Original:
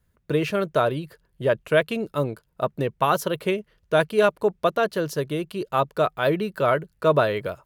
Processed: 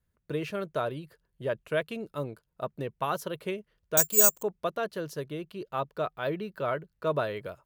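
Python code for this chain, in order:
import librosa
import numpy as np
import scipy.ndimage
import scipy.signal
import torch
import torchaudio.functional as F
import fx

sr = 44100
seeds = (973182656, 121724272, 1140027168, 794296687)

y = fx.resample_bad(x, sr, factor=6, down='none', up='zero_stuff', at=(3.97, 4.43))
y = fx.peak_eq(y, sr, hz=9400.0, db=-7.0, octaves=0.98, at=(5.28, 7.07))
y = y * 10.0 ** (-9.5 / 20.0)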